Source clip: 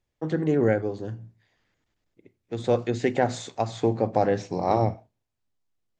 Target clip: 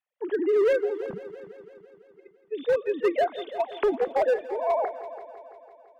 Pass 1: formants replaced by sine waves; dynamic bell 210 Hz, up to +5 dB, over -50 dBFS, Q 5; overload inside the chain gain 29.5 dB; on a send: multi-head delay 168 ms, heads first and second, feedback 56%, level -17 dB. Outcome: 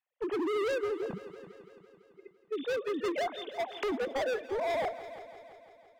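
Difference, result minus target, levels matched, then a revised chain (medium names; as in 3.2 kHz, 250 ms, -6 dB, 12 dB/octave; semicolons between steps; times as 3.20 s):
overload inside the chain: distortion +12 dB
formants replaced by sine waves; dynamic bell 210 Hz, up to +5 dB, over -50 dBFS, Q 5; overload inside the chain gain 18 dB; on a send: multi-head delay 168 ms, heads first and second, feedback 56%, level -17 dB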